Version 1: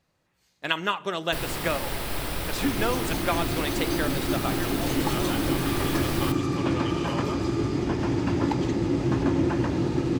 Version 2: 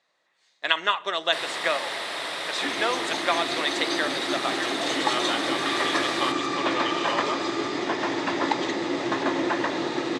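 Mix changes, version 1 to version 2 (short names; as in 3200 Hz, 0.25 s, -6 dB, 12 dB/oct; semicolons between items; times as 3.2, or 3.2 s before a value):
second sound +4.0 dB; master: add speaker cabinet 450–8700 Hz, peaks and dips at 650 Hz +4 dB, 1100 Hz +4 dB, 1900 Hz +8 dB, 3700 Hz +9 dB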